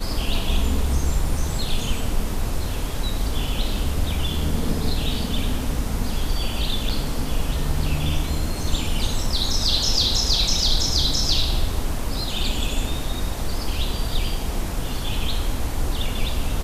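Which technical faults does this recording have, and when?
6.89–6.90 s: dropout 6.3 ms

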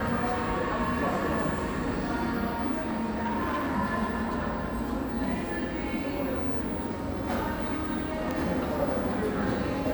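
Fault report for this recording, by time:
2.72–3.76 s: clipped -25.5 dBFS
8.31 s: pop -17 dBFS

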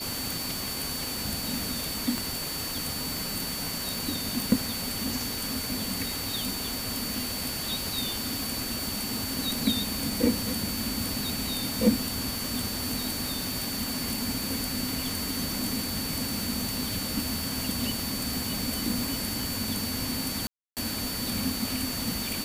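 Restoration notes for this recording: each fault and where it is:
crackle 39 per s -35 dBFS
whine 4.5 kHz -36 dBFS
2.18 s: pop
20.47–20.77 s: dropout 298 ms

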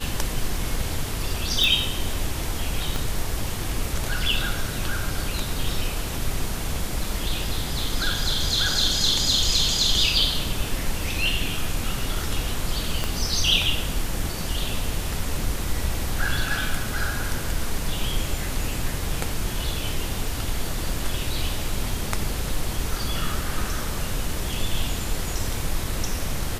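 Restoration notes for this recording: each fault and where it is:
1.64 s: pop
2.96 s: pop
13.04 s: pop -10 dBFS

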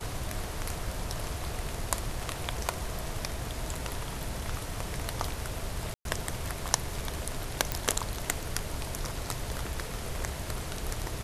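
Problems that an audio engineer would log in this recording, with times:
5.94–6.05 s: dropout 112 ms
7.72 s: pop -11 dBFS

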